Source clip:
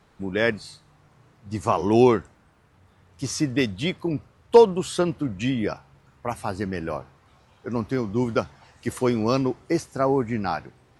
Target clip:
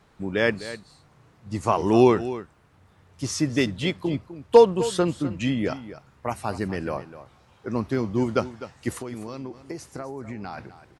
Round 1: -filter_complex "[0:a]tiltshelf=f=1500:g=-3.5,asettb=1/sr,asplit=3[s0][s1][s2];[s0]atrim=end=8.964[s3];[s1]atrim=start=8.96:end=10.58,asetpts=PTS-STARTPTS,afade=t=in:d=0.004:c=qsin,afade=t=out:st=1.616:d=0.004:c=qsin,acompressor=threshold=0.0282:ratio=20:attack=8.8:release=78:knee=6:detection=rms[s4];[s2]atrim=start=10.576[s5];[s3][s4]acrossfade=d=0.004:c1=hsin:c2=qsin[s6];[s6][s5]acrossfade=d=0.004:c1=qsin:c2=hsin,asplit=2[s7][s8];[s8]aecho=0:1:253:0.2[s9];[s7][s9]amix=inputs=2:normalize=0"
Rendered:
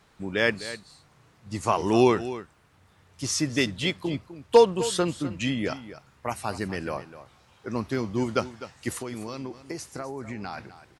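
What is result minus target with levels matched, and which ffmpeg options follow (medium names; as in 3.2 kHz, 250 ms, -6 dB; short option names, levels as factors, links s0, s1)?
2 kHz band +3.5 dB
-filter_complex "[0:a]asettb=1/sr,asplit=3[s0][s1][s2];[s0]atrim=end=8.964[s3];[s1]atrim=start=8.96:end=10.58,asetpts=PTS-STARTPTS,afade=t=in:d=0.004:c=qsin,afade=t=out:st=1.616:d=0.004:c=qsin,acompressor=threshold=0.0282:ratio=20:attack=8.8:release=78:knee=6:detection=rms[s4];[s2]atrim=start=10.576[s5];[s3][s4]acrossfade=d=0.004:c1=hsin:c2=qsin[s6];[s6][s5]acrossfade=d=0.004:c1=qsin:c2=hsin,asplit=2[s7][s8];[s8]aecho=0:1:253:0.2[s9];[s7][s9]amix=inputs=2:normalize=0"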